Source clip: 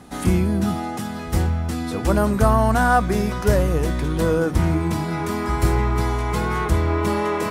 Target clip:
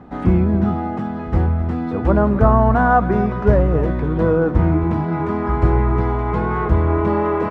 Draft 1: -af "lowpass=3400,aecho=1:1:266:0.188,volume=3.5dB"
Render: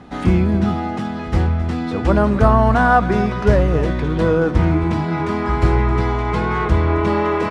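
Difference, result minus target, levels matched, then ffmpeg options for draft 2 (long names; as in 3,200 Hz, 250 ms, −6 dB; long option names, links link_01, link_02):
4,000 Hz band +12.5 dB
-af "lowpass=1400,aecho=1:1:266:0.188,volume=3.5dB"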